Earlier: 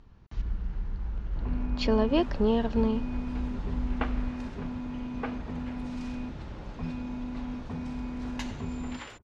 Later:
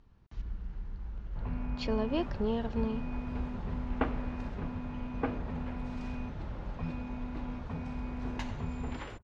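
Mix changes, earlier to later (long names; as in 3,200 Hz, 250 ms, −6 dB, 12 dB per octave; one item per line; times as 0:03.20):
speech −7.0 dB
first sound: add parametric band 310 Hz −13.5 dB 0.51 octaves
second sound: add spectral tilt −3 dB per octave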